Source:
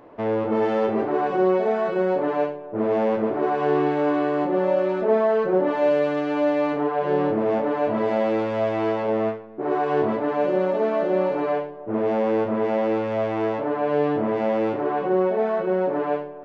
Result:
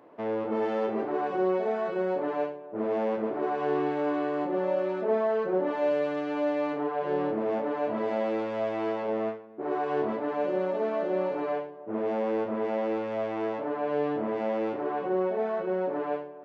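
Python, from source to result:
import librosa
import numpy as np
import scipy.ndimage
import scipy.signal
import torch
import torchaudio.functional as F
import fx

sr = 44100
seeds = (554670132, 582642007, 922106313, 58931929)

y = scipy.signal.sosfilt(scipy.signal.butter(2, 160.0, 'highpass', fs=sr, output='sos'), x)
y = y * 10.0 ** (-6.5 / 20.0)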